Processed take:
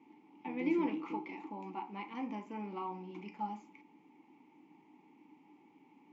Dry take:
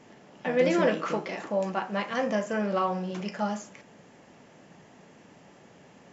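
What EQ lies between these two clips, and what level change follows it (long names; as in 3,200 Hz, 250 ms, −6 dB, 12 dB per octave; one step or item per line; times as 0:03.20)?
formant filter u
low-shelf EQ 98 Hz −7 dB
notch filter 700 Hz, Q 12
+3.0 dB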